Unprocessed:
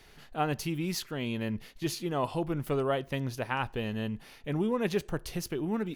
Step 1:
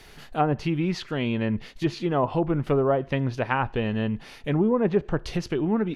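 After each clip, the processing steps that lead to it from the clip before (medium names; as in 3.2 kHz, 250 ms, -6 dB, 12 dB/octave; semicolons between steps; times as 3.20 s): low-pass that closes with the level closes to 1.1 kHz, closed at -25 dBFS; trim +7.5 dB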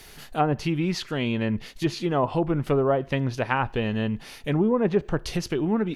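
treble shelf 6.2 kHz +12 dB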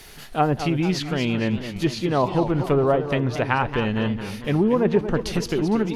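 modulated delay 226 ms, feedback 53%, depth 202 cents, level -10 dB; trim +2.5 dB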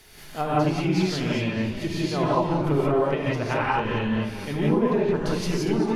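gated-style reverb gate 200 ms rising, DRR -6.5 dB; trim -8.5 dB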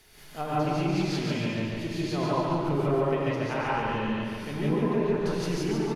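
feedback delay 143 ms, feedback 53%, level -3.5 dB; trim -6 dB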